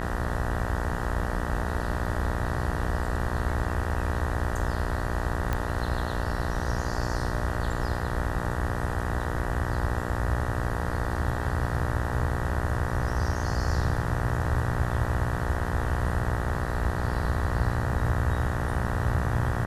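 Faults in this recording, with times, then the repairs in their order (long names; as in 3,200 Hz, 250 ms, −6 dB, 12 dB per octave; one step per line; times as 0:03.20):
mains buzz 60 Hz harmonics 32 −32 dBFS
0:05.53: click −14 dBFS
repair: click removal
hum removal 60 Hz, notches 32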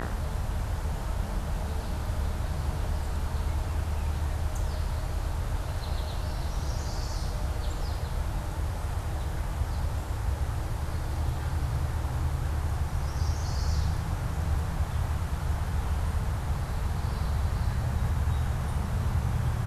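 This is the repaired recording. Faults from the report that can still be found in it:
none of them is left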